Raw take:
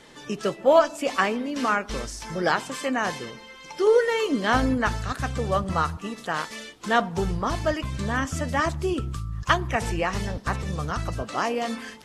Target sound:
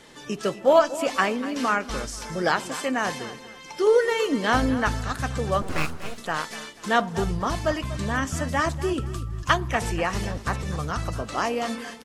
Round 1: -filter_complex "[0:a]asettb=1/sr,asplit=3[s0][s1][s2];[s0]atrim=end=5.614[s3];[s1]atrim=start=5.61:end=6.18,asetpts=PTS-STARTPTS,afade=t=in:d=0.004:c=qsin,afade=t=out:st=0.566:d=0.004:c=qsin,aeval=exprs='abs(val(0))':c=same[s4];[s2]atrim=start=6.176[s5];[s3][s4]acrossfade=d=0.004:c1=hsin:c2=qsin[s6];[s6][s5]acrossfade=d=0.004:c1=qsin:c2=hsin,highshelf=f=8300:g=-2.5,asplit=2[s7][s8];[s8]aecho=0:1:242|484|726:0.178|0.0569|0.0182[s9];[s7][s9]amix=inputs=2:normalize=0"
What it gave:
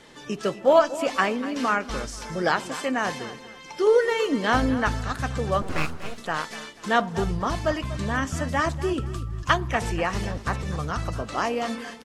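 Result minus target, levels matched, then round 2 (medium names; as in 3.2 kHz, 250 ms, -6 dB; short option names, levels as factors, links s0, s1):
8 kHz band -2.5 dB
-filter_complex "[0:a]asettb=1/sr,asplit=3[s0][s1][s2];[s0]atrim=end=5.614[s3];[s1]atrim=start=5.61:end=6.18,asetpts=PTS-STARTPTS,afade=t=in:d=0.004:c=qsin,afade=t=out:st=0.566:d=0.004:c=qsin,aeval=exprs='abs(val(0))':c=same[s4];[s2]atrim=start=6.176[s5];[s3][s4]acrossfade=d=0.004:c1=hsin:c2=qsin[s6];[s6][s5]acrossfade=d=0.004:c1=qsin:c2=hsin,highshelf=f=8300:g=4.5,asplit=2[s7][s8];[s8]aecho=0:1:242|484|726:0.178|0.0569|0.0182[s9];[s7][s9]amix=inputs=2:normalize=0"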